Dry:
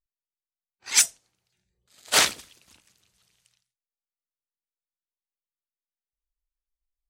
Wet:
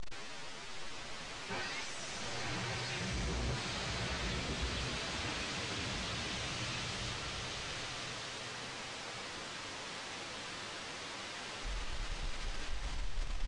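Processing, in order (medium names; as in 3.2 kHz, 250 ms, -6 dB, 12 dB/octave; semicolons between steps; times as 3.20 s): one-bit comparator; time stretch by phase-locked vocoder 1.9×; hard clipper -37.5 dBFS, distortion -7 dB; distance through air 140 m; resampled via 22.05 kHz; swelling reverb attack 1260 ms, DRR 0.5 dB; trim +2 dB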